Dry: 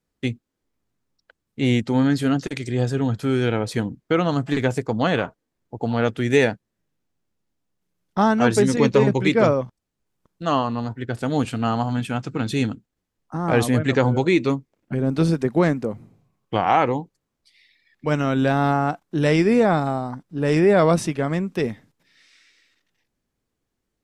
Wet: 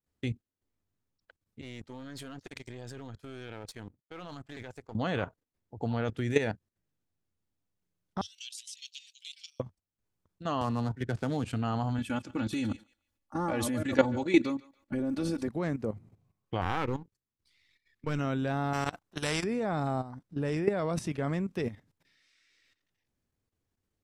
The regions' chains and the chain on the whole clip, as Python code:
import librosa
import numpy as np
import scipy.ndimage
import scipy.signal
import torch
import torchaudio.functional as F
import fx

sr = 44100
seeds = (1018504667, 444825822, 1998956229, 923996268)

y = fx.chain(x, sr, fx.halfwave_gain(db=-7.0),
    fx.low_shelf(hz=380.0, db=-10.0),
    fx.level_steps(step_db=19), at=(1.61, 4.95))
y = fx.chain(y, sr, fx.cheby1_highpass(hz=2900.0, order=5),
    fx.band_squash(depth_pct=40), at=(8.21, 9.6))
y = fx.chain(y, sr, fx.dead_time(dead_ms=0.069),
    fx.lowpass(hz=8100.0, slope=12),
    fx.band_squash(depth_pct=40), at=(10.61, 11.45))
y = fx.chain(y, sr, fx.high_shelf(hz=9900.0, db=6.0),
    fx.comb(ms=3.5, depth=0.77),
    fx.echo_thinned(ms=146, feedback_pct=21, hz=850.0, wet_db=-18), at=(11.98, 15.48))
y = fx.chain(y, sr, fx.halfwave_gain(db=-7.0),
    fx.peak_eq(hz=670.0, db=-11.5, octaves=0.47), at=(16.61, 18.19))
y = fx.chain(y, sr, fx.level_steps(step_db=21),
    fx.spectral_comp(ratio=2.0), at=(18.73, 19.44))
y = fx.peak_eq(y, sr, hz=89.0, db=9.5, octaves=0.62)
y = fx.level_steps(y, sr, step_db=13)
y = y * librosa.db_to_amplitude(-4.5)